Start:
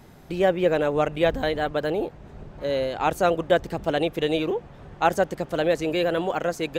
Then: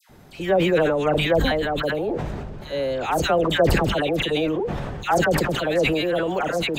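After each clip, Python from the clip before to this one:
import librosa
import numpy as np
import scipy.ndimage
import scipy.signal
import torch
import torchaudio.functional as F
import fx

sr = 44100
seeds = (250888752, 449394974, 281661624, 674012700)

y = fx.dispersion(x, sr, late='lows', ms=96.0, hz=1400.0)
y = fx.sustainer(y, sr, db_per_s=24.0)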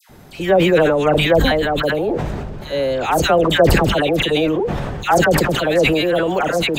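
y = fx.high_shelf(x, sr, hz=9100.0, db=3.5)
y = y * 10.0 ** (5.5 / 20.0)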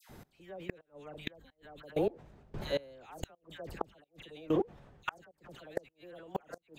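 y = fx.step_gate(x, sr, bpm=130, pattern='xx....x....', floor_db=-24.0, edge_ms=4.5)
y = fx.gate_flip(y, sr, shuts_db=-10.0, range_db=-35)
y = y * 10.0 ** (-9.0 / 20.0)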